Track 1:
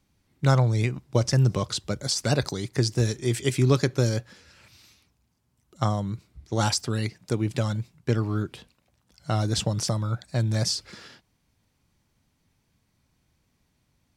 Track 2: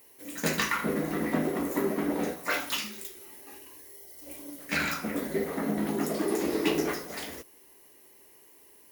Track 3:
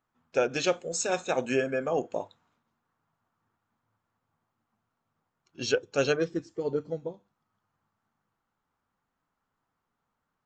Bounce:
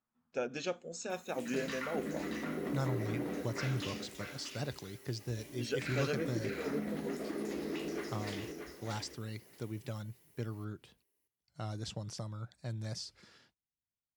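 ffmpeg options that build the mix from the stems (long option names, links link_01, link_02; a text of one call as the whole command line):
ffmpeg -i stem1.wav -i stem2.wav -i stem3.wav -filter_complex "[0:a]agate=range=-18dB:threshold=-56dB:ratio=16:detection=peak,adelay=2300,volume=-15.5dB[link_01];[1:a]equalizer=frequency=900:width_type=o:width=0.91:gain=-5.5,alimiter=level_in=1dB:limit=-24dB:level=0:latency=1:release=163,volume=-1dB,adelay=1100,volume=-5dB,asplit=2[link_02][link_03];[link_03]volume=-5.5dB[link_04];[2:a]equalizer=frequency=220:width_type=o:width=0.45:gain=10,volume=-11dB[link_05];[link_04]aecho=0:1:630|1260|1890:1|0.17|0.0289[link_06];[link_01][link_02][link_05][link_06]amix=inputs=4:normalize=0,acrossover=split=7400[link_07][link_08];[link_08]acompressor=threshold=-59dB:ratio=4:attack=1:release=60[link_09];[link_07][link_09]amix=inputs=2:normalize=0" out.wav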